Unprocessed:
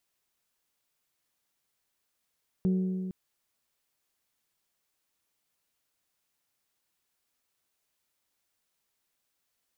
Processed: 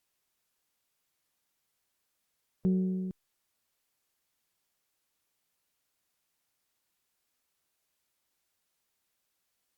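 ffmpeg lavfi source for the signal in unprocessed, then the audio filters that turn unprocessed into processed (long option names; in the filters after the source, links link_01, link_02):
-f lavfi -i "aevalsrc='0.0794*pow(10,-3*t/2.41)*sin(2*PI*186*t)+0.0237*pow(10,-3*t/1.958)*sin(2*PI*372*t)+0.00708*pow(10,-3*t/1.853)*sin(2*PI*446.4*t)+0.00211*pow(10,-3*t/1.733)*sin(2*PI*558*t)+0.000631*pow(10,-3*t/1.59)*sin(2*PI*744*t)':duration=0.46:sample_rate=44100"
-ar 48000 -c:a libopus -b:a 128k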